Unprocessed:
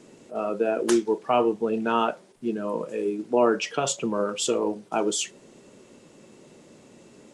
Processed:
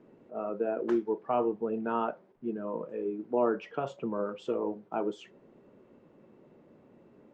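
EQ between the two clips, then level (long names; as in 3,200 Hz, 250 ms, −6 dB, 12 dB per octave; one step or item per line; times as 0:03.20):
low-pass filter 1,500 Hz 12 dB per octave
−6.5 dB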